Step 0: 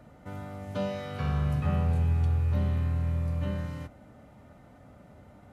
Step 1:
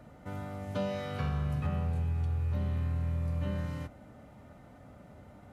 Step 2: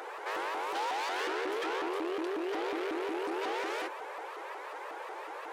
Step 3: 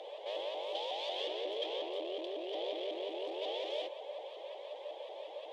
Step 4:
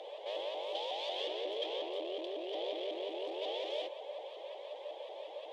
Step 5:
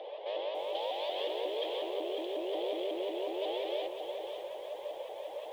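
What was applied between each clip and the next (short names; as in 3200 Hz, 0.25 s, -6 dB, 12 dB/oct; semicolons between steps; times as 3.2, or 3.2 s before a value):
compressor, threshold -28 dBFS, peak gain reduction 6.5 dB
overdrive pedal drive 31 dB, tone 4700 Hz, clips at -21.5 dBFS; frequency shift +280 Hz; shaped vibrato saw up 5.5 Hz, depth 250 cents; gain -6 dB
double band-pass 1400 Hz, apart 2.5 oct; gain +7.5 dB
nothing audible
air absorption 230 m; lo-fi delay 0.549 s, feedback 35%, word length 10-bit, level -7.5 dB; gain +4 dB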